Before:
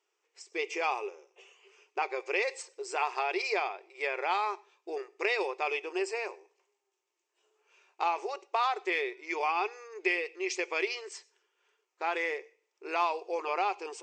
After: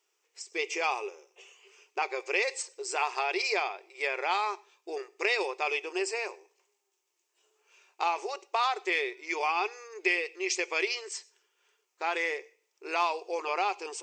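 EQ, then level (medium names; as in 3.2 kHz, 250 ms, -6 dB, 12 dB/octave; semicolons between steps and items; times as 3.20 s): treble shelf 3.8 kHz +9.5 dB; 0.0 dB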